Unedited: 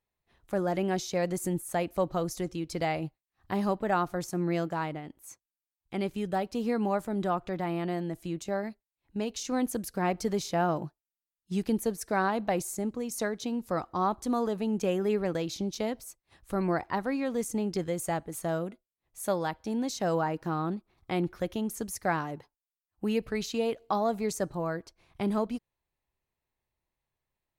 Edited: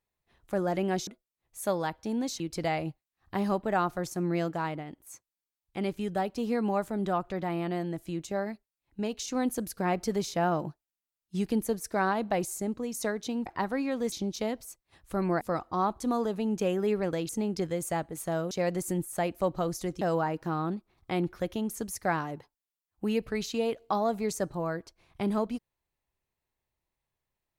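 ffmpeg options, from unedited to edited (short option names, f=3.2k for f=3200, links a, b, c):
-filter_complex "[0:a]asplit=9[a][b][c][d][e][f][g][h][i];[a]atrim=end=1.072[j];[b]atrim=start=18.678:end=20.012[k];[c]atrim=start=2.568:end=13.632[l];[d]atrim=start=16.798:end=17.462[m];[e]atrim=start=15.508:end=16.802[n];[f]atrim=start=13.628:end=15.512[o];[g]atrim=start=17.458:end=18.682[p];[h]atrim=start=1.068:end=2.572[q];[i]atrim=start=20.008[r];[j][k]acrossfade=d=0.004:c1=hsin:c2=hsin[s];[s][l]acrossfade=d=0.004:c1=hsin:c2=hsin[t];[t][m]acrossfade=d=0.004:c1=hsin:c2=hsin[u];[u][n]acrossfade=d=0.004:c1=hsin:c2=hsin[v];[v][o]acrossfade=d=0.004:c1=hsin:c2=hsin[w];[w][p]acrossfade=d=0.004:c1=hsin:c2=hsin[x];[x][q]acrossfade=d=0.004:c1=hsin:c2=hsin[y];[y][r]acrossfade=d=0.004:c1=hsin:c2=hsin"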